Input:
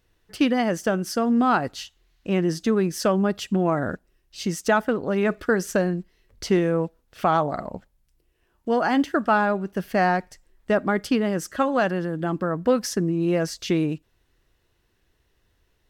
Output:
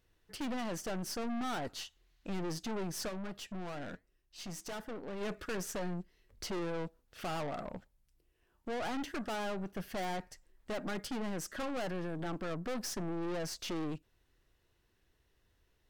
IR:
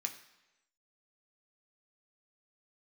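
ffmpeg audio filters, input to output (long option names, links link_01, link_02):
-filter_complex "[0:a]aeval=exprs='(tanh(35.5*val(0)+0.45)-tanh(0.45))/35.5':channel_layout=same,asplit=3[link_01][link_02][link_03];[link_01]afade=type=out:start_time=3.08:duration=0.02[link_04];[link_02]flanger=delay=3.6:depth=4.5:regen=-84:speed=1.2:shape=triangular,afade=type=in:start_time=3.08:duration=0.02,afade=type=out:start_time=5.2:duration=0.02[link_05];[link_03]afade=type=in:start_time=5.2:duration=0.02[link_06];[link_04][link_05][link_06]amix=inputs=3:normalize=0,volume=-4.5dB"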